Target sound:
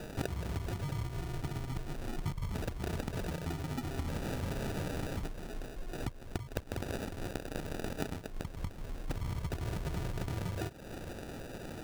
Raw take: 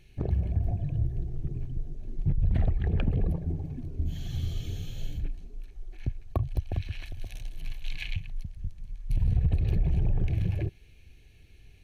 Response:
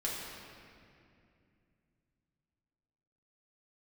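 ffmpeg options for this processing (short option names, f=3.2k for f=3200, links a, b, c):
-af "aemphasis=mode=production:type=riaa,acompressor=threshold=-49dB:ratio=10,acrusher=samples=41:mix=1:aa=0.000001,volume=16dB"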